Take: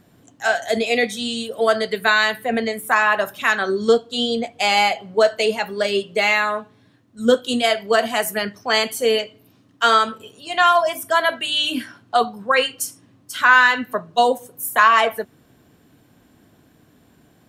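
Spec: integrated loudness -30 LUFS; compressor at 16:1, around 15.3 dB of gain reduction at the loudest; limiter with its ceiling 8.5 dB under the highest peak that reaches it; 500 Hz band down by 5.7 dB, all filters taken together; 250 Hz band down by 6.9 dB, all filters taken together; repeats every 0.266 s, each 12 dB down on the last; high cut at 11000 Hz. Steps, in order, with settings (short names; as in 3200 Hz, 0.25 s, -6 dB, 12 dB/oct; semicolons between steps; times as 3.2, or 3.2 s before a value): LPF 11000 Hz; bell 250 Hz -6.5 dB; bell 500 Hz -6 dB; compressor 16:1, threshold -24 dBFS; limiter -20 dBFS; feedback echo 0.266 s, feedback 25%, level -12 dB; gain +0.5 dB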